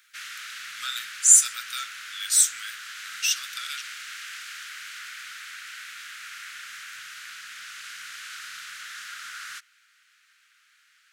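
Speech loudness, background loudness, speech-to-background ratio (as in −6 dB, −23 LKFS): −20.0 LKFS, −37.5 LKFS, 17.5 dB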